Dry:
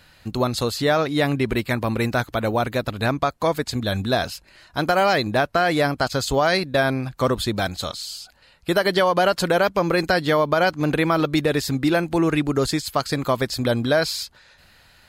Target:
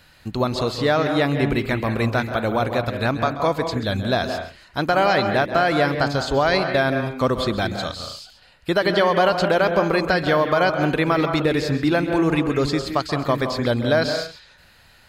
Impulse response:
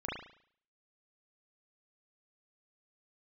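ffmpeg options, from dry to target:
-filter_complex "[0:a]acrossover=split=5800[a][b];[b]acompressor=threshold=-49dB:ratio=4:attack=1:release=60[c];[a][c]amix=inputs=2:normalize=0,asplit=2[d][e];[1:a]atrim=start_sample=2205,afade=t=out:st=0.22:d=0.01,atrim=end_sample=10143,adelay=133[f];[e][f]afir=irnorm=-1:irlink=0,volume=-10dB[g];[d][g]amix=inputs=2:normalize=0"

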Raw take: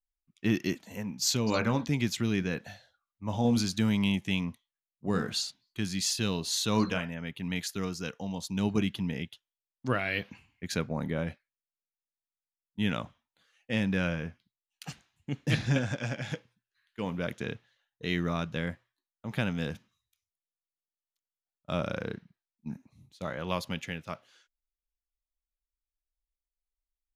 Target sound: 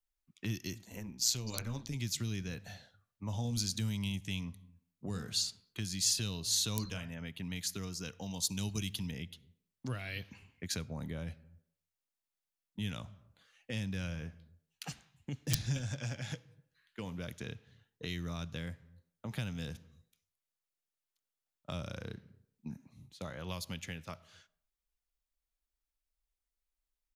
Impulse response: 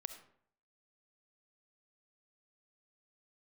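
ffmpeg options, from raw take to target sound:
-filter_complex "[0:a]asplit=2[a][b];[1:a]atrim=start_sample=2205[c];[b][c]afir=irnorm=-1:irlink=0,volume=-11dB[d];[a][d]amix=inputs=2:normalize=0,aeval=exprs='(mod(4.22*val(0)+1,2)-1)/4.22':c=same,acrossover=split=110|4100[e][f][g];[e]aecho=1:1:259:0.168[h];[f]acompressor=threshold=-42dB:ratio=6[i];[h][i][g]amix=inputs=3:normalize=0,asplit=3[j][k][l];[j]afade=t=out:st=0.82:d=0.02[m];[k]tremolo=f=120:d=0.571,afade=t=in:st=0.82:d=0.02,afade=t=out:st=1.95:d=0.02[n];[l]afade=t=in:st=1.95:d=0.02[o];[m][n][o]amix=inputs=3:normalize=0,asettb=1/sr,asplit=3[p][q][r];[p]atrim=end=8.224[s];[q]atrim=start=8.22:end=9.11,asetpts=PTS-STARTPTS,afade=t=in:d=0.004:c=qsin,afade=t=out:st=0.886:d=0.004:c=qsin,highshelf=f=2.6k:g=9[t];[r]atrim=start=9.106[u];[s][t]acrossfade=d=0.004:c1=hsin:c2=qsin[v];[v][u]acrossfade=d=0.004:c1=qsin:c2=hsin"

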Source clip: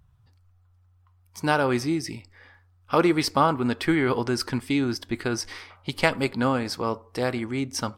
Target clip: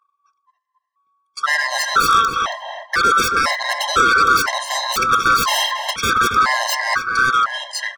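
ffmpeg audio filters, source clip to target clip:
-filter_complex "[0:a]afftfilt=real='real(if(lt(b,960),b+48*(1-2*mod(floor(b/48),2)),b),0)':imag='imag(if(lt(b,960),b+48*(1-2*mod(floor(b/48),2)),b),0)':win_size=2048:overlap=0.75,areverse,acompressor=threshold=-38dB:ratio=6,areverse,highpass=f=1.4k:p=1,bandreject=f=3.7k:w=23,agate=range=-28dB:threshold=-59dB:ratio=16:detection=peak,equalizer=f=4k:w=0.3:g=9,aresample=22050,aresample=44100,dynaudnorm=f=540:g=5:m=13dB,aeval=exprs='0.422*sin(PI/2*5.62*val(0)/0.422)':c=same,highshelf=f=2.9k:g=-9,asplit=2[a][b];[b]adelay=276,lowpass=f=1.9k:p=1,volume=-4dB,asplit=2[c][d];[d]adelay=276,lowpass=f=1.9k:p=1,volume=0.31,asplit=2[e][f];[f]adelay=276,lowpass=f=1.9k:p=1,volume=0.31,asplit=2[g][h];[h]adelay=276,lowpass=f=1.9k:p=1,volume=0.31[i];[a][c][e][g][i]amix=inputs=5:normalize=0,afftfilt=real='re*gt(sin(2*PI*1*pts/sr)*(1-2*mod(floor(b*sr/1024/540),2)),0)':imag='im*gt(sin(2*PI*1*pts/sr)*(1-2*mod(floor(b*sr/1024/540),2)),0)':win_size=1024:overlap=0.75"

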